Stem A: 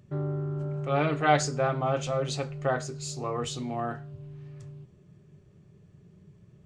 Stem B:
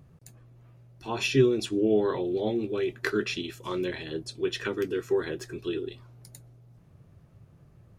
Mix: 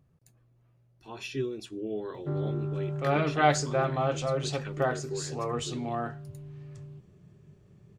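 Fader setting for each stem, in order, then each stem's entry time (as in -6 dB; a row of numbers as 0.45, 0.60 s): -0.5, -11.0 dB; 2.15, 0.00 s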